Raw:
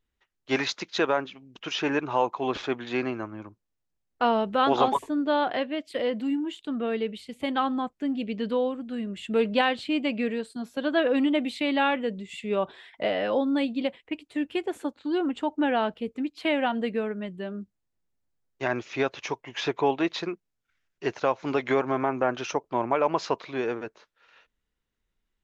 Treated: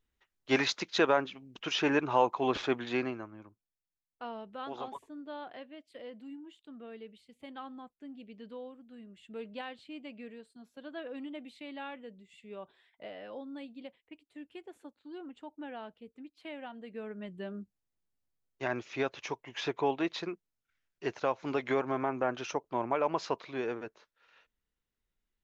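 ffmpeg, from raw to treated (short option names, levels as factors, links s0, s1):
-af "volume=3.55,afade=t=out:st=2.82:d=0.43:silence=0.375837,afade=t=out:st=3.25:d=1:silence=0.375837,afade=t=in:st=16.86:d=0.54:silence=0.237137"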